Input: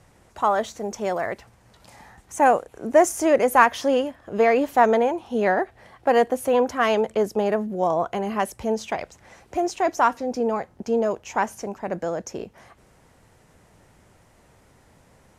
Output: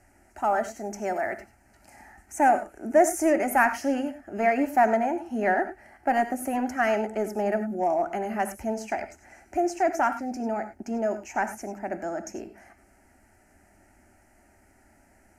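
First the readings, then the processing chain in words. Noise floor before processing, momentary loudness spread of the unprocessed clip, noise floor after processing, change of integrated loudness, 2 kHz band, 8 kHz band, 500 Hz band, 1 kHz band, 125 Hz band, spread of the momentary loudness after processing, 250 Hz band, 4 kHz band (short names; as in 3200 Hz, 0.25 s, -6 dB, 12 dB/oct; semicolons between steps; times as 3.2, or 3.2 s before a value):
-57 dBFS, 13 LU, -60 dBFS, -4.0 dB, -2.0 dB, -2.5 dB, -5.5 dB, -3.0 dB, n/a, 12 LU, -2.0 dB, -10.5 dB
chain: in parallel at -10 dB: hard clip -16.5 dBFS, distortion -10 dB; on the sum: fixed phaser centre 720 Hz, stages 8; non-linear reverb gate 0.12 s rising, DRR 10 dB; gain -3 dB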